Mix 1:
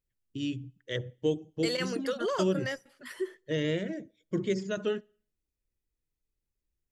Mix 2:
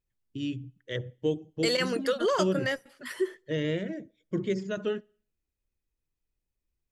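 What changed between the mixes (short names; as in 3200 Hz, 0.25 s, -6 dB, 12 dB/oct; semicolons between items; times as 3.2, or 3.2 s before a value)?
first voice: add tone controls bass +1 dB, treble -5 dB; second voice +5.0 dB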